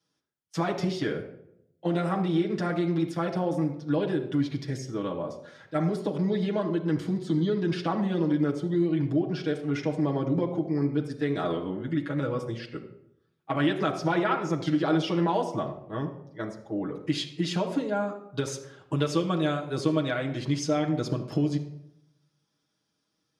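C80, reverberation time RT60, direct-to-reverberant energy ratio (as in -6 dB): 12.0 dB, 0.80 s, -2.0 dB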